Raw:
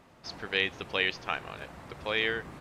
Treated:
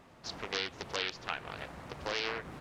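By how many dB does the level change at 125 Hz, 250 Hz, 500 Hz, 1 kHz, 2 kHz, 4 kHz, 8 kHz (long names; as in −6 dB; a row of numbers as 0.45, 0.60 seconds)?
−3.5, −5.0, −5.5, −2.0, −8.0, −4.0, +6.0 decibels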